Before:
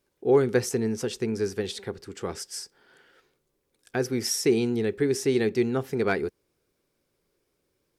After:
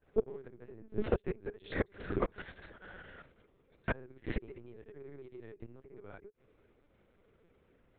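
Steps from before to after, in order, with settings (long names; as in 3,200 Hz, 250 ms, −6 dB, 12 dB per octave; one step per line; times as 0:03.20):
low-pass filter 2,500 Hz 12 dB per octave
granular cloud 100 ms, grains 20 per second, pitch spread up and down by 0 semitones
in parallel at −3.5 dB: soft clipping −27 dBFS, distortion −7 dB
on the sum: gate with flip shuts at −20 dBFS, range −32 dB
linear-prediction vocoder at 8 kHz pitch kept
level +5 dB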